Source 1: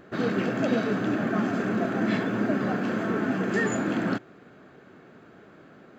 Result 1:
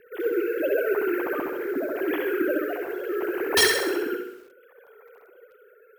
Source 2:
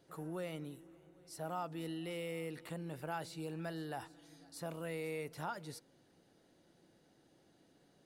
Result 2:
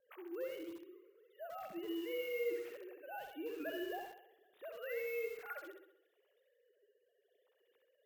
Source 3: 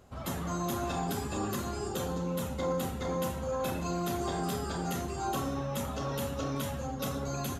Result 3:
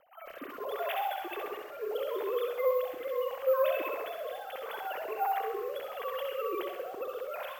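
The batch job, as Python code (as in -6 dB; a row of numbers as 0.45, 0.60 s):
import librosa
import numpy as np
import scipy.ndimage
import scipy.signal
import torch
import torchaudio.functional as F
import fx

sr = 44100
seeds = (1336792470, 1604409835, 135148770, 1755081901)

p1 = fx.sine_speech(x, sr)
p2 = fx.high_shelf(p1, sr, hz=2400.0, db=5.5)
p3 = (np.mod(10.0 ** (12.0 / 20.0) * p2 + 1.0, 2.0) - 1.0) / 10.0 ** (12.0 / 20.0)
p4 = fx.quant_float(p3, sr, bits=6)
p5 = fx.rotary(p4, sr, hz=0.75)
p6 = p5 + fx.room_flutter(p5, sr, wall_m=11.2, rt60_s=0.72, dry=0)
p7 = np.repeat(scipy.signal.resample_poly(p6, 1, 3), 3)[:len(p6)]
y = fx.echo_crushed(p7, sr, ms=82, feedback_pct=35, bits=8, wet_db=-12.0)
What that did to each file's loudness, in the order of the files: +1.5, 0.0, 0.0 LU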